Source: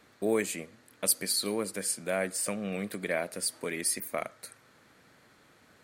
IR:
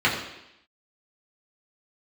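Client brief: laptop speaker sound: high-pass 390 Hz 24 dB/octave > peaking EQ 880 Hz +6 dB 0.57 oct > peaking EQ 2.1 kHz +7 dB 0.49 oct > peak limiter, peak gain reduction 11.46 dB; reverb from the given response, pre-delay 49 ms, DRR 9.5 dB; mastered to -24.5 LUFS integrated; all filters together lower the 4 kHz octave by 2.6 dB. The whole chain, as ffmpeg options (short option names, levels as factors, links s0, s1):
-filter_complex "[0:a]equalizer=f=4000:t=o:g=-3.5,asplit=2[s0][s1];[1:a]atrim=start_sample=2205,adelay=49[s2];[s1][s2]afir=irnorm=-1:irlink=0,volume=0.0422[s3];[s0][s3]amix=inputs=2:normalize=0,highpass=f=390:w=0.5412,highpass=f=390:w=1.3066,equalizer=f=880:t=o:w=0.57:g=6,equalizer=f=2100:t=o:w=0.49:g=7,volume=3.16,alimiter=limit=0.211:level=0:latency=1"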